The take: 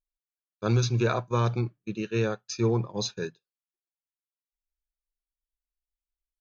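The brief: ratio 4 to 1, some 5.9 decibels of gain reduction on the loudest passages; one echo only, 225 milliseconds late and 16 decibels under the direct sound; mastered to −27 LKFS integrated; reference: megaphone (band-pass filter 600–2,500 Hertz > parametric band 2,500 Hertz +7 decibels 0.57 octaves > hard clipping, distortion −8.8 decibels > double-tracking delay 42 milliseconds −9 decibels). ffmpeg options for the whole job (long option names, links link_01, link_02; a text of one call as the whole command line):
ffmpeg -i in.wav -filter_complex "[0:a]acompressor=threshold=-26dB:ratio=4,highpass=600,lowpass=2500,equalizer=frequency=2500:width_type=o:width=0.57:gain=7,aecho=1:1:225:0.158,asoftclip=type=hard:threshold=-34dB,asplit=2[link_01][link_02];[link_02]adelay=42,volume=-9dB[link_03];[link_01][link_03]amix=inputs=2:normalize=0,volume=14dB" out.wav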